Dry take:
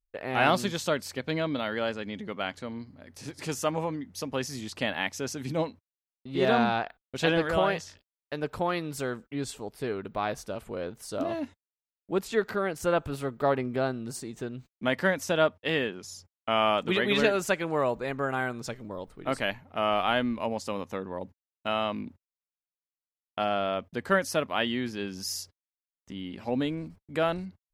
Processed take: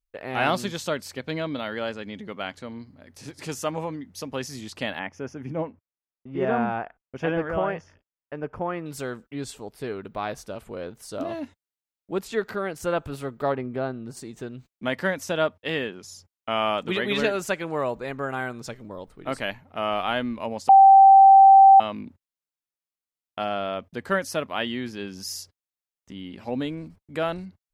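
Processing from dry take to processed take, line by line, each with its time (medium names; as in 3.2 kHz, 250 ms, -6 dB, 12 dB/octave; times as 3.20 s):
4.99–8.86 s: boxcar filter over 11 samples
13.52–14.17 s: treble shelf 3.2 kHz -11 dB
20.69–21.80 s: bleep 779 Hz -8 dBFS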